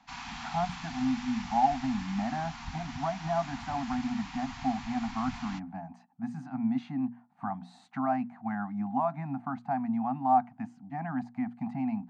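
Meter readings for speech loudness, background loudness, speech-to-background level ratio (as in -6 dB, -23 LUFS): -33.0 LUFS, -42.5 LUFS, 9.5 dB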